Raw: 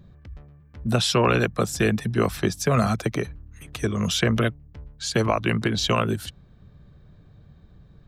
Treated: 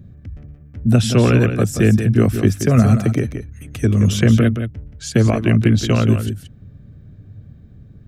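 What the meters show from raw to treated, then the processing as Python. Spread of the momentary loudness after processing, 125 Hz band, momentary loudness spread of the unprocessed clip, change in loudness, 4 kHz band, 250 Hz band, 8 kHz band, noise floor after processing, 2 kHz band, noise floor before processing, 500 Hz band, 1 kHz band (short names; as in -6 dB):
13 LU, +11.5 dB, 10 LU, +7.5 dB, -2.0 dB, +9.5 dB, +2.0 dB, -44 dBFS, +1.0 dB, -52 dBFS, +4.0 dB, -2.5 dB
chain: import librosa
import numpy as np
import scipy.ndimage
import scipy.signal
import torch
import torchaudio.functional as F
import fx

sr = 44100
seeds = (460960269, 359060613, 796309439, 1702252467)

p1 = fx.graphic_eq_15(x, sr, hz=(100, 250, 1000, 4000), db=(11, 8, -10, -8))
p2 = p1 + fx.echo_single(p1, sr, ms=176, db=-9.0, dry=0)
y = F.gain(torch.from_numpy(p2), 3.0).numpy()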